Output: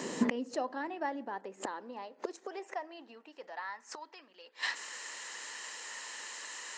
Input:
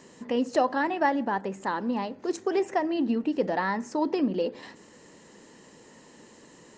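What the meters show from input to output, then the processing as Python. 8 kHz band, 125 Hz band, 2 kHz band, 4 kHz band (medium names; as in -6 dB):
+5.0 dB, under -10 dB, -5.5 dB, -0.5 dB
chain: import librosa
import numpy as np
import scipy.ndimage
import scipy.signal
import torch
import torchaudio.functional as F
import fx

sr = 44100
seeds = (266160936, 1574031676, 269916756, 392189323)

y = fx.gate_flip(x, sr, shuts_db=-28.0, range_db=-25)
y = fx.filter_sweep_highpass(y, sr, from_hz=220.0, to_hz=1400.0, start_s=0.5, end_s=4.28, q=0.96)
y = y * librosa.db_to_amplitude(13.0)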